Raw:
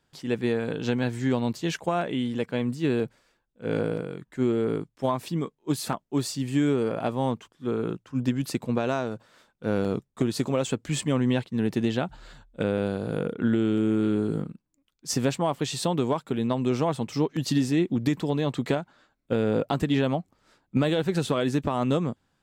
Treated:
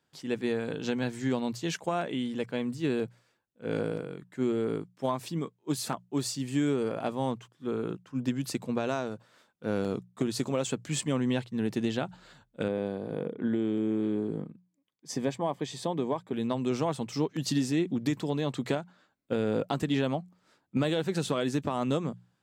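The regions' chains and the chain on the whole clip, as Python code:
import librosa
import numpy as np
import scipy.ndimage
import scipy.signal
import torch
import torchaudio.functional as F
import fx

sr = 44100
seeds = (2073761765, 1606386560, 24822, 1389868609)

y = fx.chain(x, sr, fx.high_shelf(hz=3500.0, db=-10.5),
    fx.notch_comb(f0_hz=1400.0), at=(12.68, 16.33))
y = fx.dynamic_eq(y, sr, hz=6700.0, q=0.86, threshold_db=-49.0, ratio=4.0, max_db=4)
y = scipy.signal.sosfilt(scipy.signal.butter(2, 92.0, 'highpass', fs=sr, output='sos'), y)
y = fx.hum_notches(y, sr, base_hz=60, count=3)
y = y * 10.0 ** (-4.0 / 20.0)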